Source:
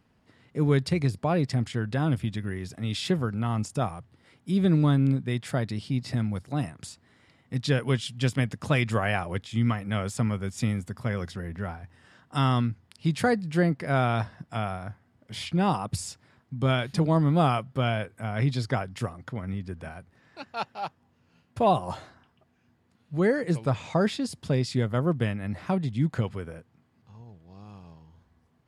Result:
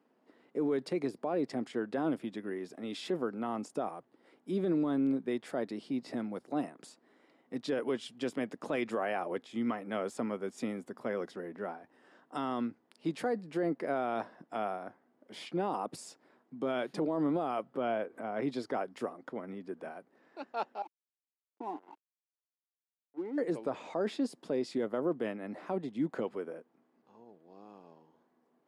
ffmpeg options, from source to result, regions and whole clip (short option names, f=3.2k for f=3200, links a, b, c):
-filter_complex "[0:a]asettb=1/sr,asplit=3[a][b][c];[a]atrim=end=17.744[d];[b]atrim=start=17.74:end=18.43,asetpts=PTS-STARTPTS,afade=t=in:d=0.004:c=qsin,afade=t=out:st=0.686:d=0.004:c=qsin,highshelf=f=3.4k:g=-9.5,acompressor=mode=upward:threshold=-32dB:ratio=2.5:attack=3.2:release=140:knee=2.83:detection=peak[e];[c]atrim=start=18.426[f];[d][e]acrossfade=d=0.004:c1=hsin:c2=qsin[g];[g][f]acrossfade=d=0.004:c1=qsin:c2=hsin,asettb=1/sr,asplit=3[h][i][j];[h]atrim=end=20.824[k];[i]atrim=start=20.82:end=23.38,asetpts=PTS-STARTPTS,afade=t=in:d=0.004:c=qsin,afade=t=out:st=2.556:d=0.004:c=qsin,asplit=3[l][m][n];[l]bandpass=f=300:t=q:w=8,volume=0dB[o];[m]bandpass=f=870:t=q:w=8,volume=-6dB[p];[n]bandpass=f=2.24k:t=q:w=8,volume=-9dB[q];[o][p][q]amix=inputs=3:normalize=0,aeval=exprs='sgn(val(0))*max(abs(val(0))-0.00355,0)':c=same[r];[j]atrim=start=23.376[s];[k][r]acrossfade=d=0.004:c1=hsin:c2=qsin[t];[t][s]acrossfade=d=0.004:c1=qsin:c2=hsin,highpass=f=290:w=0.5412,highpass=f=290:w=1.3066,tiltshelf=f=1.2k:g=8,alimiter=limit=-19dB:level=0:latency=1:release=30,volume=-4.5dB"